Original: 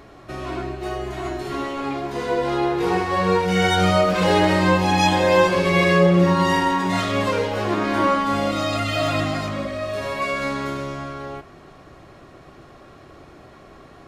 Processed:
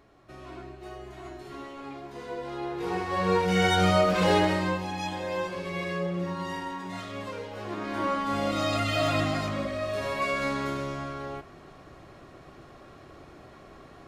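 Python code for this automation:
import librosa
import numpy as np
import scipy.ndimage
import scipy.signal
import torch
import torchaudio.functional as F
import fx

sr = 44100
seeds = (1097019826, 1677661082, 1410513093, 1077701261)

y = fx.gain(x, sr, db=fx.line((2.53, -14.0), (3.41, -4.5), (4.34, -4.5), (4.93, -15.5), (7.45, -15.5), (8.66, -4.0)))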